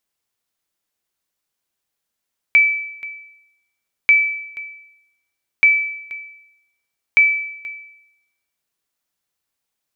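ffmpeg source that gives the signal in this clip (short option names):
-f lavfi -i "aevalsrc='0.531*(sin(2*PI*2310*mod(t,1.54))*exp(-6.91*mod(t,1.54)/0.84)+0.106*sin(2*PI*2310*max(mod(t,1.54)-0.48,0))*exp(-6.91*max(mod(t,1.54)-0.48,0)/0.84))':d=6.16:s=44100"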